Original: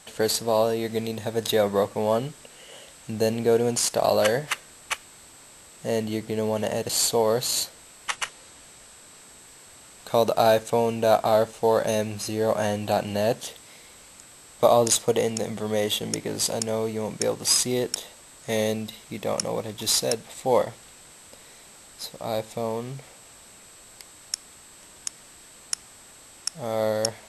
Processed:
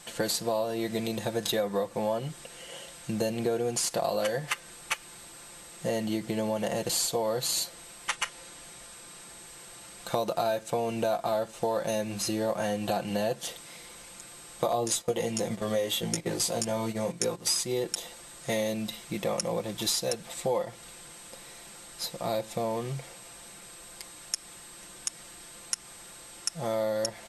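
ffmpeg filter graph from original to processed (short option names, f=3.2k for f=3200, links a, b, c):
-filter_complex "[0:a]asettb=1/sr,asplit=3[a][b][c];[a]atrim=end=14.724[d];[b]atrim=start=14.72:end=17.61,asetpts=PTS-STARTPTS,afade=t=in:d=0.004:c=qsin,afade=t=out:st=2.886:d=0.004:c=qsin,asplit=2[e][f];[f]adelay=17,volume=-4.5dB[g];[e][g]amix=inputs=2:normalize=0,atrim=end_sample=127449,agate=range=-10dB:threshold=-32dB:ratio=16:release=100:detection=peak[h];[c]atrim=start=17.606[i];[d][h]acrossfade=d=0.004:c1=hsin:c2=qsin[j];[j][i]acrossfade=d=0.004:c1=qsin:c2=hsin,aecho=1:1:5.8:0.64,acompressor=threshold=-26dB:ratio=5"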